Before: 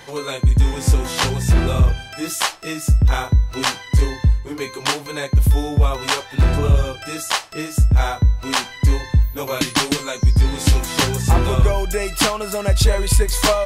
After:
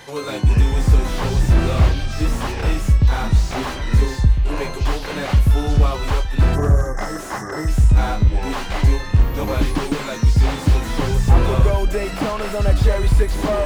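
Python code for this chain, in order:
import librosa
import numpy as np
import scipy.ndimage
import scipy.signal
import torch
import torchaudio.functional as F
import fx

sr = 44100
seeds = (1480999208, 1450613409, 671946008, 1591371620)

y = fx.echo_pitch(x, sr, ms=106, semitones=-6, count=3, db_per_echo=-6.0)
y = fx.spec_erase(y, sr, start_s=6.55, length_s=1.13, low_hz=2100.0, high_hz=5000.0)
y = fx.slew_limit(y, sr, full_power_hz=100.0)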